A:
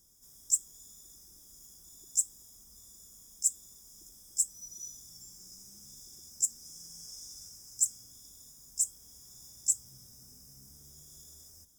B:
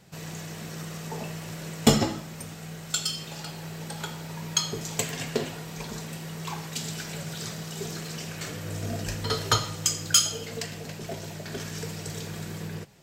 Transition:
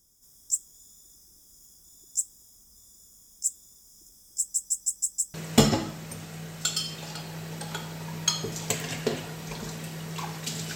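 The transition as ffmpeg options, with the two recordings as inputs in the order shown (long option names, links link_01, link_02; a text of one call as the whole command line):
ffmpeg -i cue0.wav -i cue1.wav -filter_complex "[0:a]apad=whole_dur=10.75,atrim=end=10.75,asplit=6[link_01][link_02][link_03][link_04][link_05][link_06];[link_01]atrim=end=4.542[link_07];[link_02]atrim=start=4.378:end=4.542[link_08];[link_03]atrim=start=4.378:end=4.542[link_09];[link_04]atrim=start=4.378:end=4.542[link_10];[link_05]atrim=start=4.378:end=4.542[link_11];[link_06]atrim=start=4.378:end=4.542[link_12];[1:a]atrim=start=1.628:end=7.04[link_13];[link_07][link_08]acrossfade=duration=0.004:curve1=hsin:curve2=hsin[link_14];[link_14][link_09]acrossfade=duration=0.004:curve1=hsin:curve2=hsin[link_15];[link_15][link_10]acrossfade=duration=0.004:curve1=hsin:curve2=hsin[link_16];[link_16][link_11]acrossfade=duration=0.004:curve1=hsin:curve2=hsin[link_17];[link_17][link_12]acrossfade=duration=0.004:curve1=hsin:curve2=hsin[link_18];[link_18][link_13]acrossfade=duration=0.004:curve1=hsin:curve2=hsin" out.wav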